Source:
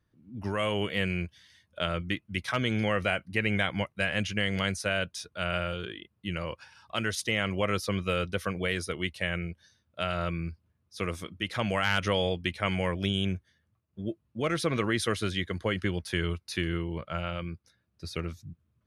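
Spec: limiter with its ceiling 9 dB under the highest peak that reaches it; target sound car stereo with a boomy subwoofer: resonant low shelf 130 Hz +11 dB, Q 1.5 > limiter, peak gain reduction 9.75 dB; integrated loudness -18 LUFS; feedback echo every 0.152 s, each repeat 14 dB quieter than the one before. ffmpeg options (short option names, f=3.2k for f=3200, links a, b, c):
-af "alimiter=limit=-20.5dB:level=0:latency=1,lowshelf=f=130:t=q:w=1.5:g=11,aecho=1:1:152|304:0.2|0.0399,volume=14dB,alimiter=limit=-8.5dB:level=0:latency=1"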